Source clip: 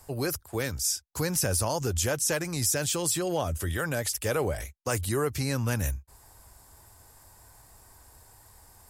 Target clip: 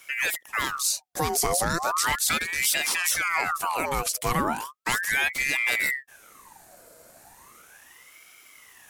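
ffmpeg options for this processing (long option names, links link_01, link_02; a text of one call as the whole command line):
ffmpeg -i in.wav -af "bandreject=frequency=2300:width=23,aeval=exprs='val(0)*sin(2*PI*1400*n/s+1400*0.6/0.36*sin(2*PI*0.36*n/s))':channel_layout=same,volume=5.5dB" out.wav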